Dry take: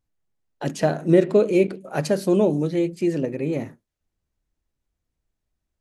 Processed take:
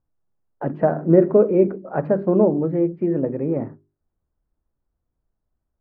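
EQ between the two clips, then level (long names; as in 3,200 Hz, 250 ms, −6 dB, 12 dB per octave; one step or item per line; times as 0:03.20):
low-pass filter 1,400 Hz 24 dB per octave
mains-hum notches 50/100/150/200/250/300/350/400 Hz
+3.0 dB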